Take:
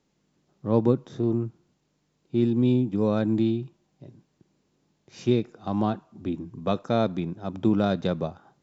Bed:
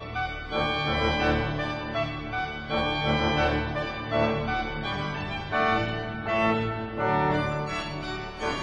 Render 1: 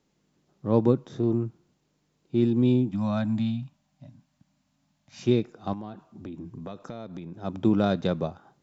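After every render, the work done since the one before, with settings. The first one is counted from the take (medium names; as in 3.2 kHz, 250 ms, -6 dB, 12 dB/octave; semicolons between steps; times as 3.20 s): 2.91–5.23 s: elliptic band-stop 280–590 Hz; 5.73–7.34 s: compression 8:1, threshold -34 dBFS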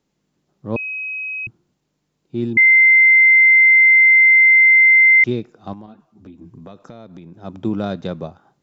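0.76–1.47 s: bleep 2.54 kHz -23.5 dBFS; 2.57–5.24 s: bleep 2.08 kHz -7 dBFS; 5.86–6.42 s: three-phase chorus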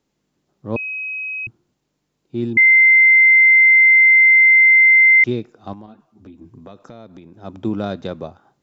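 peaking EQ 170 Hz -7.5 dB 0.27 oct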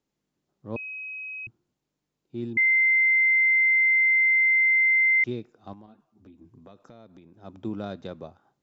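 trim -10 dB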